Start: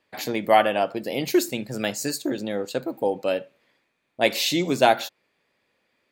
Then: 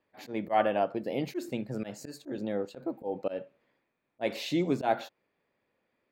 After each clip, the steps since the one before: treble shelf 5.4 kHz -6.5 dB; slow attack 124 ms; treble shelf 2.1 kHz -11 dB; trim -3.5 dB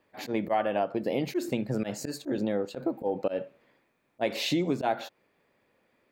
compression 4:1, threshold -33 dBFS, peak gain reduction 11.5 dB; trim +8 dB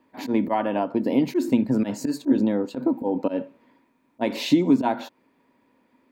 small resonant body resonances 260/950 Hz, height 15 dB, ringing for 50 ms; trim +1 dB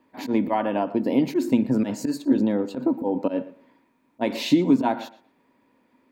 tape echo 116 ms, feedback 21%, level -16.5 dB, low-pass 3.6 kHz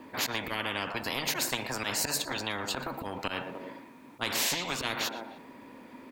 Chebyshev shaper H 3 -26 dB, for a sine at -7 dBFS; speakerphone echo 300 ms, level -27 dB; spectrum-flattening compressor 10:1; trim -5.5 dB

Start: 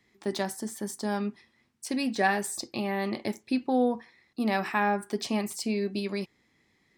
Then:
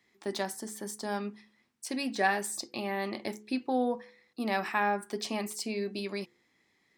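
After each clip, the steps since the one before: bass shelf 160 Hz -11.5 dB; de-hum 70.57 Hz, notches 7; trim -1.5 dB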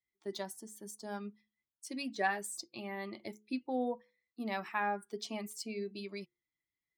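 expander on every frequency bin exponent 1.5; trim -4 dB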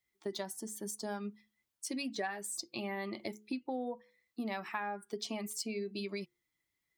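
compression 5:1, threshold -43 dBFS, peak gain reduction 15.5 dB; trim +7.5 dB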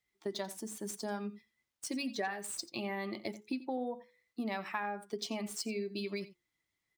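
median filter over 3 samples; echo from a far wall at 15 m, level -16 dB; trim +1 dB

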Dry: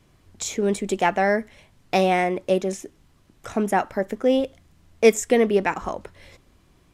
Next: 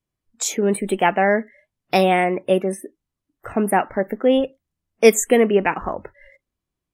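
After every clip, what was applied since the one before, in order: spectral noise reduction 29 dB; treble shelf 9.1 kHz +10.5 dB; trim +3 dB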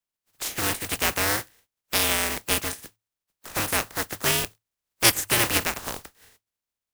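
spectral contrast reduction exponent 0.17; frequency shift -110 Hz; trim -6.5 dB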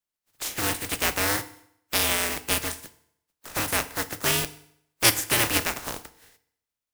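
FDN reverb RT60 0.71 s, low-frequency decay 1×, high-frequency decay 0.9×, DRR 12 dB; trim -1 dB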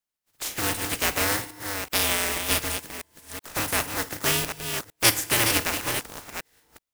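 chunks repeated in reverse 377 ms, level -6.5 dB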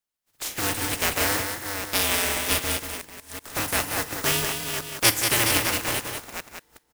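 delay 186 ms -6 dB

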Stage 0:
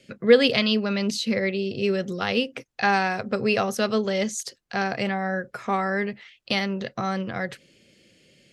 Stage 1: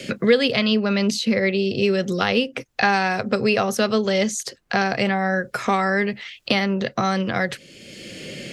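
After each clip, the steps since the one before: three bands compressed up and down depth 70%; trim +4 dB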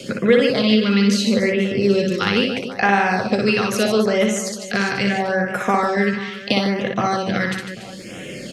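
reverse bouncing-ball echo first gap 60 ms, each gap 1.5×, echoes 5; LFO notch sine 0.76 Hz 620–4700 Hz; trim +1 dB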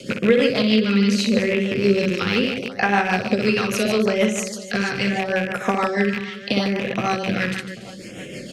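rattle on loud lows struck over -29 dBFS, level -14 dBFS; rotary cabinet horn 6.3 Hz

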